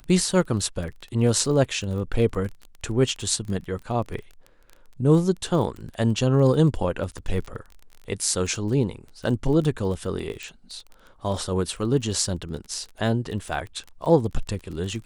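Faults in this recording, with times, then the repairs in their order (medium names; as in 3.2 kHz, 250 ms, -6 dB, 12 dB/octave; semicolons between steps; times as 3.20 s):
crackle 23 per s -32 dBFS
10.43 s: pop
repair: de-click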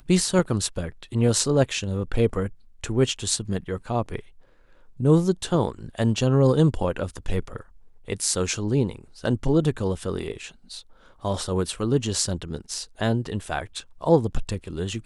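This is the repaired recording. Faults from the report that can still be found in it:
nothing left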